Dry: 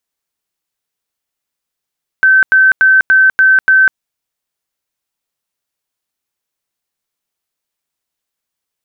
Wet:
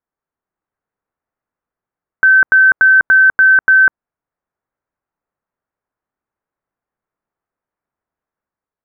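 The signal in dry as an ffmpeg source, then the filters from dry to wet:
-f lavfi -i "aevalsrc='0.596*sin(2*PI*1540*mod(t,0.29))*lt(mod(t,0.29),306/1540)':d=1.74:s=44100"
-af "dynaudnorm=f=100:g=9:m=1.58,lowpass=f=1600:w=0.5412,lowpass=f=1600:w=1.3066"

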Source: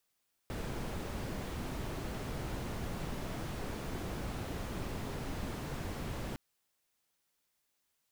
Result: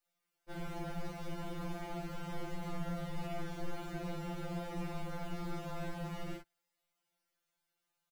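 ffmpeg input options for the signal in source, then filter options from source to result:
-f lavfi -i "anoisesrc=c=brown:a=0.0556:d=5.86:r=44100:seed=1"
-af "highshelf=f=3200:g=-8.5,aecho=1:1:13|51:0.501|0.668,afftfilt=real='re*2.83*eq(mod(b,8),0)':imag='im*2.83*eq(mod(b,8),0)':win_size=2048:overlap=0.75"

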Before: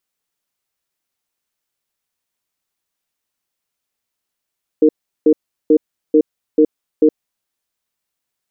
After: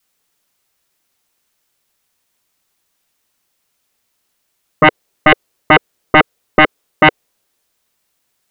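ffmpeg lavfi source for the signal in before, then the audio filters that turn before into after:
-f lavfi -i "aevalsrc='0.335*(sin(2*PI*307*t)+sin(2*PI*462*t))*clip(min(mod(t,0.44),0.07-mod(t,0.44))/0.005,0,1)':d=2.6:s=44100"
-af "adynamicequalizer=threshold=0.0501:dfrequency=460:dqfactor=1.5:tfrequency=460:tqfactor=1.5:attack=5:release=100:ratio=0.375:range=4:mode=boostabove:tftype=bell,aeval=exprs='0.708*sin(PI/2*2.51*val(0)/0.708)':c=same"

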